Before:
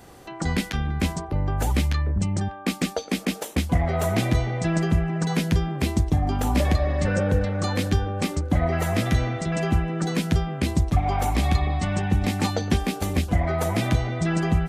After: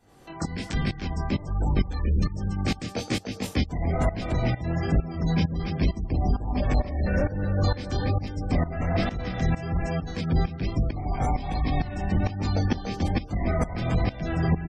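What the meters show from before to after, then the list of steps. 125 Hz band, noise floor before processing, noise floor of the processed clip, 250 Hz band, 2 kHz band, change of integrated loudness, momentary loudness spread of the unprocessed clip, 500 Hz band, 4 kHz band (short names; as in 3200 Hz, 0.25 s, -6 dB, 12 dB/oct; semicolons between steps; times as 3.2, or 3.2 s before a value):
-2.5 dB, -39 dBFS, -40 dBFS, -3.0 dB, -5.0 dB, -3.0 dB, 4 LU, -4.0 dB, -4.5 dB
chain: octaver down 1 oct, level -3 dB; echo 0.286 s -3.5 dB; dynamic EQ 5100 Hz, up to +5 dB, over -50 dBFS, Q 2.5; chorus 1.2 Hz, delay 19.5 ms, depth 5.9 ms; overloaded stage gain 17 dB; tremolo saw up 2.2 Hz, depth 85%; spectral gate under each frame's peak -30 dB strong; gain +2 dB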